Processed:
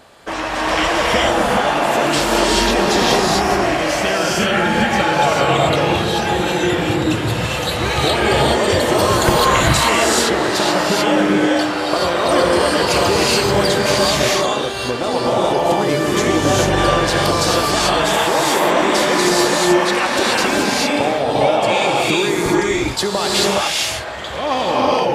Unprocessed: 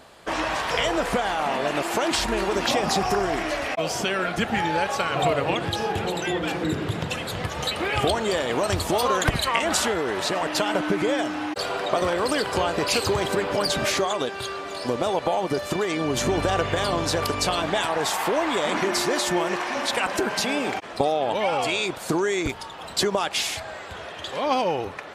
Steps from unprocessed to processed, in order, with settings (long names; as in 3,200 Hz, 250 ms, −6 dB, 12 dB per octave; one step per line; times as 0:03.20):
reverb whose tail is shaped and stops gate 460 ms rising, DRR −5 dB
level +2.5 dB